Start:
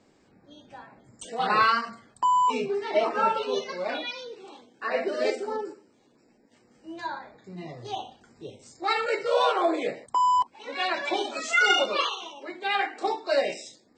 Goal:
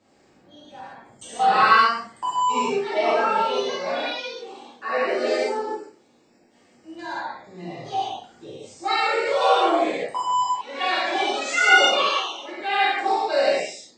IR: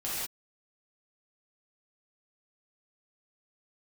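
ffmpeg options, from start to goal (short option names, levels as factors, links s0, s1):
-filter_complex "[0:a]lowshelf=f=170:g=-7[s0];[1:a]atrim=start_sample=2205,afade=t=out:st=0.24:d=0.01,atrim=end_sample=11025[s1];[s0][s1]afir=irnorm=-1:irlink=0"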